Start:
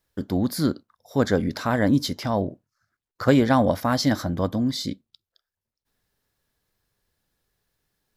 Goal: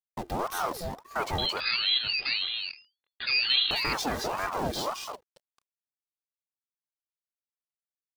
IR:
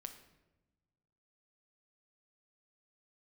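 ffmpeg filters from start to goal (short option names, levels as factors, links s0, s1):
-filter_complex "[0:a]aeval=exprs='if(lt(val(0),0),0.447*val(0),val(0))':c=same,highpass=61,equalizer=f=1300:t=o:w=0.62:g=2.5,acrusher=bits=7:dc=4:mix=0:aa=0.000001,asoftclip=type=tanh:threshold=0.178,lowshelf=f=150:g=7.5,alimiter=limit=0.106:level=0:latency=1:release=222,asettb=1/sr,asplit=3[s0][s1][s2];[s0]atrim=end=1.384[s3];[s1]atrim=start=1.38:end=3.71,asetpts=PTS-STARTPTS,afade=t=in:d=0.004:c=qsin,afade=t=out:st=2.326:d=0.004:c=qsin,lowpass=f=3300:t=q:w=0.5098,lowpass=f=3300:t=q:w=0.6013,lowpass=f=3300:t=q:w=0.9,lowpass=f=3300:t=q:w=2.563,afreqshift=-3900[s4];[s2]atrim=start=3.706[s5];[s3][s4]acrossfade=d=0.004:c1=hsin:c2=qsin[s6];[s6][s5]acrossfade=d=0.004:c1=qsin:c2=hsin,aecho=1:1:2.5:0.65,aecho=1:1:221:0.631,aeval=exprs='val(0)*sin(2*PI*750*n/s+750*0.55/1.8*sin(2*PI*1.8*n/s))':c=same"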